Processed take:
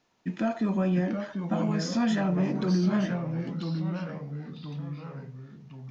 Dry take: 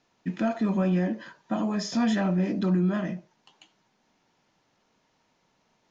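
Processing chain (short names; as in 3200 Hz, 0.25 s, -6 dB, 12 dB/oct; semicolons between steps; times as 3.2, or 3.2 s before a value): echoes that change speed 0.666 s, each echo -2 st, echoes 3, each echo -6 dB; gain -1.5 dB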